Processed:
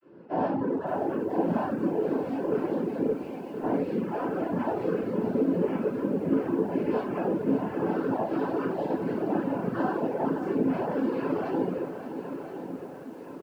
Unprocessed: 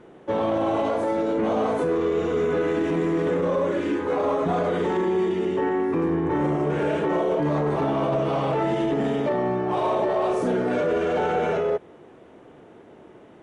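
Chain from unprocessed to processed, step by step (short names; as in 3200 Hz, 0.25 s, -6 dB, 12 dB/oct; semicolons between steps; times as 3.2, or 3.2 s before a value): arpeggiated vocoder bare fifth, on G#3, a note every 0.117 s; vibrato 4.8 Hz 45 cents; flange 0.27 Hz, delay 3.8 ms, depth 5.4 ms, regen -32%; compressor 12:1, threshold -25 dBFS, peak gain reduction 6 dB; noise vocoder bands 8; 0.6–1.3 high shelf 3600 Hz -10 dB; 3.09–3.62 elliptic high-pass 2200 Hz; feedback echo 1.019 s, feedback 57%, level -11 dB; shoebox room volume 140 m³, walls mixed, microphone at 3 m; reverb removal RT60 1.7 s; lo-fi delay 0.57 s, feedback 55%, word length 8-bit, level -10 dB; gain -7 dB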